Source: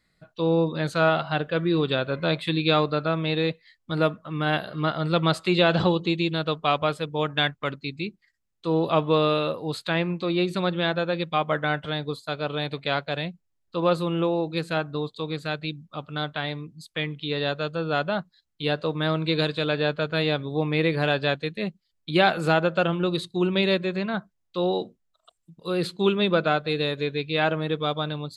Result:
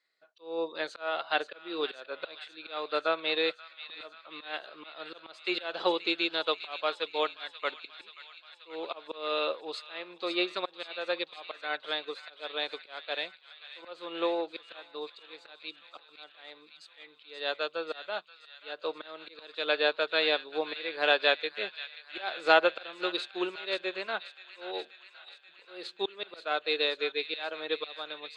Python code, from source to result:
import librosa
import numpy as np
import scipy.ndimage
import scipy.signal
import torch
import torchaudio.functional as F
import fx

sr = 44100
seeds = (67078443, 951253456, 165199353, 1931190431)

p1 = scipy.signal.sosfilt(scipy.signal.butter(4, 380.0, 'highpass', fs=sr, output='sos'), x)
p2 = fx.high_shelf(p1, sr, hz=2200.0, db=9.5)
p3 = fx.auto_swell(p2, sr, attack_ms=321.0)
p4 = fx.air_absorb(p3, sr, metres=120.0)
p5 = p4 + fx.echo_wet_highpass(p4, sr, ms=532, feedback_pct=71, hz=1600.0, wet_db=-8, dry=0)
y = fx.upward_expand(p5, sr, threshold_db=-37.0, expansion=1.5)